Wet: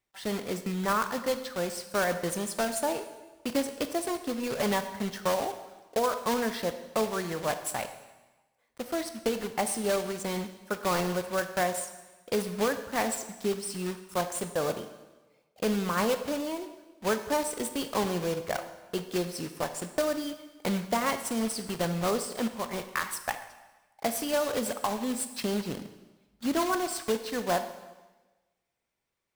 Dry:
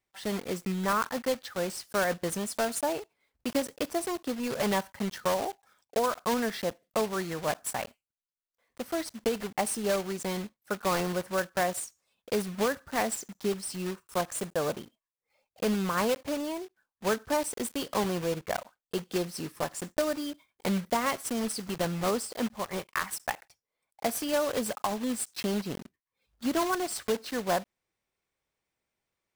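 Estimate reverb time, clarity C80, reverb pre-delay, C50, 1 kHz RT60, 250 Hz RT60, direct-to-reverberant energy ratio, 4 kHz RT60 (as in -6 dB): 1.2 s, 12.5 dB, 7 ms, 10.5 dB, 1.2 s, 1.2 s, 9.0 dB, 1.1 s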